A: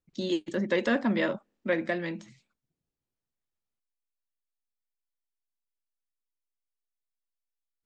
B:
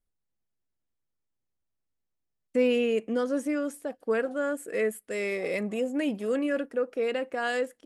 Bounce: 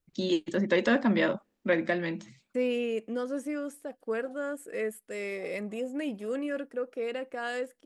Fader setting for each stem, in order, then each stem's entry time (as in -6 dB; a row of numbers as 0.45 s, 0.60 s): +1.5 dB, -5.0 dB; 0.00 s, 0.00 s